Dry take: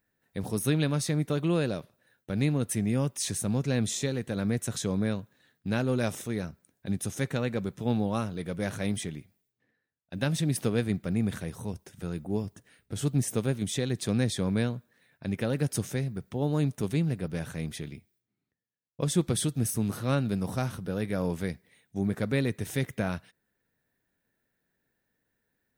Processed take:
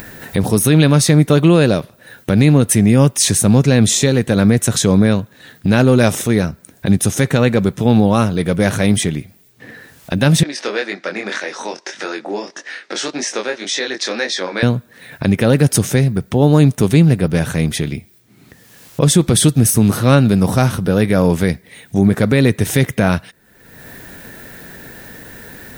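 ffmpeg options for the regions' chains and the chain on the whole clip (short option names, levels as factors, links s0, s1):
-filter_complex "[0:a]asettb=1/sr,asplit=3[s0][s1][s2];[s0]atrim=end=10.434[s3];[s1]atrim=start=10.43:end=14.63,asetpts=PTS-STARTPTS,afade=t=in:d=0.004:c=qsin,afade=t=out:st=4.196:d=0.004:c=qsin,highpass=f=410:w=0.5412,highpass=f=410:w=1.3066,equalizer=f=440:t=q:w=4:g=-9,equalizer=f=700:t=q:w=4:g=-5,equalizer=f=1100:t=q:w=4:g=-3,equalizer=f=1800:t=q:w=4:g=4,equalizer=f=3100:t=q:w=4:g=-4,equalizer=f=5600:t=q:w=4:g=4,lowpass=f=5800:w=0.5412,lowpass=f=5800:w=1.3066,flanger=delay=20:depth=4.5:speed=1.8[s4];[s2]atrim=start=14.626[s5];[s3][s4]acrossfade=d=0.004:c1=hsin:c2=qsin[s6];[s6][s5]acrossfade=d=0.004:c1=qsin:c2=hsin,acompressor=mode=upward:threshold=0.0251:ratio=2.5,alimiter=level_in=8.41:limit=0.891:release=50:level=0:latency=1,volume=0.891"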